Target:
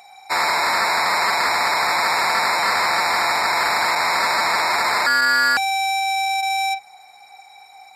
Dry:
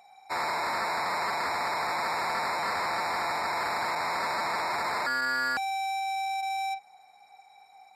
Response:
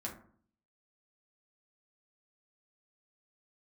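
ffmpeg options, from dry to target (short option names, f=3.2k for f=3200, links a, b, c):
-af "acontrast=40,tiltshelf=f=1.2k:g=-4.5,bandreject=f=50:t=h:w=6,bandreject=f=100:t=h:w=6,bandreject=f=150:t=h:w=6,volume=5dB"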